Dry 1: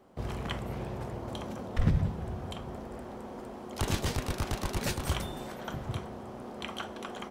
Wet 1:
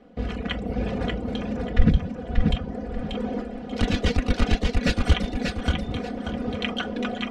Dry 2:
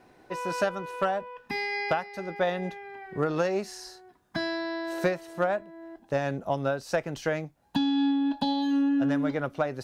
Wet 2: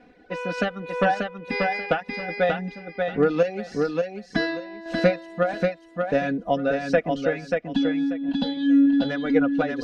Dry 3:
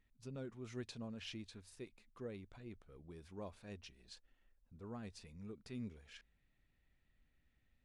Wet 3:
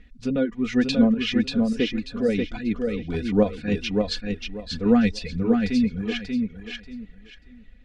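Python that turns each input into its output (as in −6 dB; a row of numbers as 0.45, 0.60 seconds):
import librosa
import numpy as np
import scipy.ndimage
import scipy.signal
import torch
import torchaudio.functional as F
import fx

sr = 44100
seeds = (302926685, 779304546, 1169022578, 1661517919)

p1 = scipy.signal.sosfilt(scipy.signal.butter(2, 3400.0, 'lowpass', fs=sr, output='sos'), x)
p2 = fx.dereverb_blind(p1, sr, rt60_s=1.2)
p3 = fx.peak_eq(p2, sr, hz=970.0, db=-12.0, octaves=0.72)
p4 = p3 + 0.77 * np.pad(p3, (int(4.1 * sr / 1000.0), 0))[:len(p3)]
p5 = fx.rider(p4, sr, range_db=4, speed_s=0.5)
p6 = p4 + (p5 * librosa.db_to_amplitude(1.0))
p7 = fx.tremolo_random(p6, sr, seeds[0], hz=3.5, depth_pct=55)
p8 = p7 + fx.echo_feedback(p7, sr, ms=586, feedback_pct=24, wet_db=-4.0, dry=0)
y = p8 * 10.0 ** (-24 / 20.0) / np.sqrt(np.mean(np.square(p8)))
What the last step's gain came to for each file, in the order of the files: +6.0, +1.5, +22.5 decibels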